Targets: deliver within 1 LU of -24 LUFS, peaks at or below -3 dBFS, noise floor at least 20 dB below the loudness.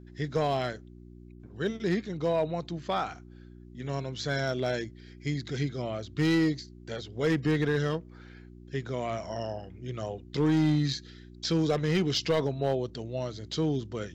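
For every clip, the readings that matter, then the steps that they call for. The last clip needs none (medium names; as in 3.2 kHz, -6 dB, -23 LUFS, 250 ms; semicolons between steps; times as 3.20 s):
clipped samples 1.1%; clipping level -19.5 dBFS; hum 60 Hz; highest harmonic 360 Hz; hum level -48 dBFS; loudness -30.5 LUFS; peak level -19.5 dBFS; loudness target -24.0 LUFS
-> clip repair -19.5 dBFS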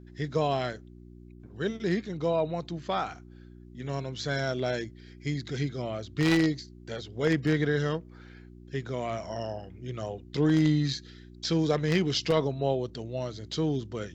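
clipped samples 0.0%; hum 60 Hz; highest harmonic 360 Hz; hum level -48 dBFS
-> de-hum 60 Hz, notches 6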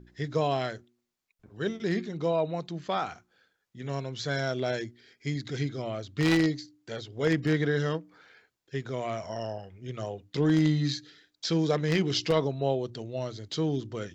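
hum not found; loudness -30.0 LUFS; peak level -10.5 dBFS; loudness target -24.0 LUFS
-> trim +6 dB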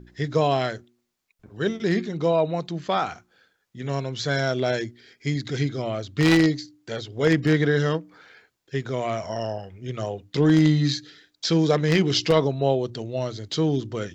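loudness -24.0 LUFS; peak level -4.5 dBFS; noise floor -74 dBFS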